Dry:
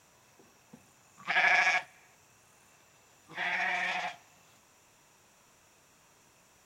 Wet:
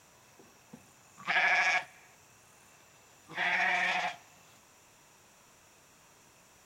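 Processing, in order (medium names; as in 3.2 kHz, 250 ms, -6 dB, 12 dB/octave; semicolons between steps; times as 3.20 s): peak limiter -19 dBFS, peak gain reduction 7 dB; trim +2.5 dB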